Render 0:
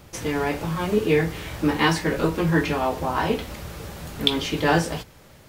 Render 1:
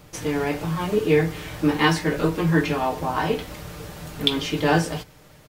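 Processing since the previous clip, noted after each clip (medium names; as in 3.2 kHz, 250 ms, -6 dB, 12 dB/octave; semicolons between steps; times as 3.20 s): comb 6.6 ms, depth 37%; trim -1 dB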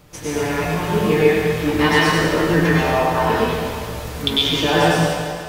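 reverberation RT60 2.1 s, pre-delay 95 ms, DRR -7 dB; trim -1 dB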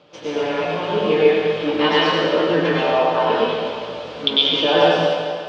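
cabinet simulation 250–4500 Hz, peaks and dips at 550 Hz +8 dB, 1.9 kHz -6 dB, 3.1 kHz +6 dB; trim -1 dB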